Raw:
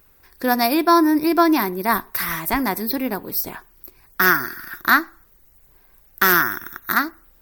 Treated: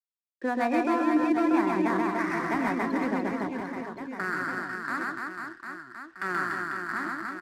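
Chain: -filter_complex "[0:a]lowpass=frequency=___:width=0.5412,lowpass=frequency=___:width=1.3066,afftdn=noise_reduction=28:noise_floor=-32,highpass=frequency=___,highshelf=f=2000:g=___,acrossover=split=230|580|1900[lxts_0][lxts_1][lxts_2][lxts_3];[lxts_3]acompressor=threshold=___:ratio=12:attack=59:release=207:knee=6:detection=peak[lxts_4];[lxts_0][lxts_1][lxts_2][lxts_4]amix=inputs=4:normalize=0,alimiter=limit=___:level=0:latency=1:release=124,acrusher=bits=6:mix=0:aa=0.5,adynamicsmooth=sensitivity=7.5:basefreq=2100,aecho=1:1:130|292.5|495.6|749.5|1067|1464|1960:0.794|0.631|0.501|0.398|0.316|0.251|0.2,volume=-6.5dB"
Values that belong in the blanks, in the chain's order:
3100, 3100, 120, 2.5, -35dB, -13.5dB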